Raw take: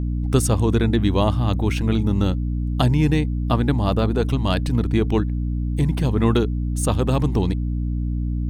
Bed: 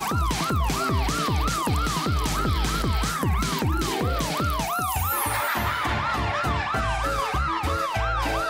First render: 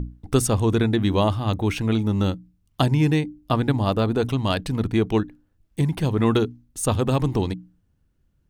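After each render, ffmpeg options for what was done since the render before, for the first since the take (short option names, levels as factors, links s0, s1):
-af "bandreject=f=60:t=h:w=6,bandreject=f=120:t=h:w=6,bandreject=f=180:t=h:w=6,bandreject=f=240:t=h:w=6,bandreject=f=300:t=h:w=6"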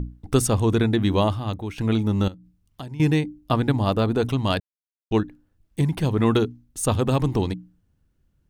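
-filter_complex "[0:a]asettb=1/sr,asplit=3[s0][s1][s2];[s0]atrim=end=2.284[s3];[s1]atrim=start=2.28:end=3,asetpts=PTS-STARTPTS,afade=t=in:d=0.004:c=qsin,afade=t=out:st=0.716:d=0.004:c=qsin,acompressor=threshold=0.00562:ratio=2:attack=3.2:release=140:knee=1:detection=peak[s4];[s2]atrim=start=2.996[s5];[s3][s4]acrossfade=d=0.004:c1=hsin:c2=qsin[s6];[s6][s5]acrossfade=d=0.004:c1=qsin:c2=hsin,asplit=4[s7][s8][s9][s10];[s7]atrim=end=1.78,asetpts=PTS-STARTPTS,afade=t=out:st=1.19:d=0.59:silence=0.223872[s11];[s8]atrim=start=1.78:end=4.6,asetpts=PTS-STARTPTS,afade=t=in:d=0.004:c=hsin:silence=0.223872,afade=t=out:st=2.816:d=0.004:c=hsin[s12];[s9]atrim=start=4.6:end=5.11,asetpts=PTS-STARTPTS,volume=0[s13];[s10]atrim=start=5.11,asetpts=PTS-STARTPTS,afade=t=in:d=0.004:c=hsin[s14];[s11][s12][s13][s14]concat=n=4:v=0:a=1"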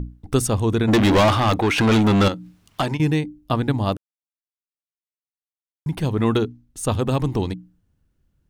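-filter_complex "[0:a]asplit=3[s0][s1][s2];[s0]afade=t=out:st=0.87:d=0.02[s3];[s1]asplit=2[s4][s5];[s5]highpass=f=720:p=1,volume=31.6,asoftclip=type=tanh:threshold=0.376[s6];[s4][s6]amix=inputs=2:normalize=0,lowpass=f=3900:p=1,volume=0.501,afade=t=in:st=0.87:d=0.02,afade=t=out:st=2.96:d=0.02[s7];[s2]afade=t=in:st=2.96:d=0.02[s8];[s3][s7][s8]amix=inputs=3:normalize=0,asettb=1/sr,asplit=3[s9][s10][s11];[s9]atrim=end=6.384[s12];[s10]atrim=start=6.38:end=6.87,asetpts=PTS-STARTPTS,afade=t=in:d=0.004:c=qsin,afade=t=out:st=0.486:d=0.004:c=qsin,highshelf=f=7700:g=-5[s13];[s11]atrim=start=6.866[s14];[s12][s13]acrossfade=d=0.004:c1=hsin:c2=qsin[s15];[s15][s14]acrossfade=d=0.004:c1=qsin:c2=hsin,asplit=3[s16][s17][s18];[s16]atrim=end=3.97,asetpts=PTS-STARTPTS,afade=t=out:st=3.966:d=0.004:c=hsin[s19];[s17]atrim=start=3.97:end=5.86,asetpts=PTS-STARTPTS,volume=0[s20];[s18]atrim=start=5.86,asetpts=PTS-STARTPTS,afade=t=in:d=0.004:c=hsin[s21];[s19][s20][s21]concat=n=3:v=0:a=1"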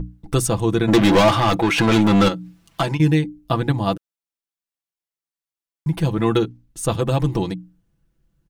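-af "aecho=1:1:6:0.65"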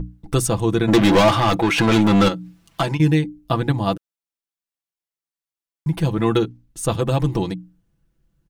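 -af anull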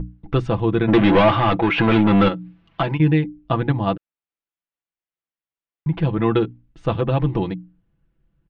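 -af "lowpass=f=3100:w=0.5412,lowpass=f=3100:w=1.3066"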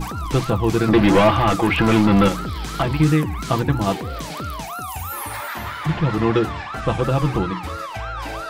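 -filter_complex "[1:a]volume=0.631[s0];[0:a][s0]amix=inputs=2:normalize=0"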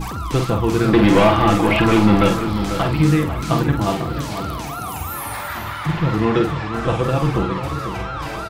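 -filter_complex "[0:a]asplit=2[s0][s1];[s1]adelay=48,volume=0.501[s2];[s0][s2]amix=inputs=2:normalize=0,asplit=2[s3][s4];[s4]adelay=494,lowpass=f=2400:p=1,volume=0.355,asplit=2[s5][s6];[s6]adelay=494,lowpass=f=2400:p=1,volume=0.43,asplit=2[s7][s8];[s8]adelay=494,lowpass=f=2400:p=1,volume=0.43,asplit=2[s9][s10];[s10]adelay=494,lowpass=f=2400:p=1,volume=0.43,asplit=2[s11][s12];[s12]adelay=494,lowpass=f=2400:p=1,volume=0.43[s13];[s3][s5][s7][s9][s11][s13]amix=inputs=6:normalize=0"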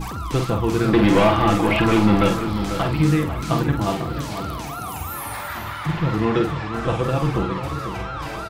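-af "volume=0.75"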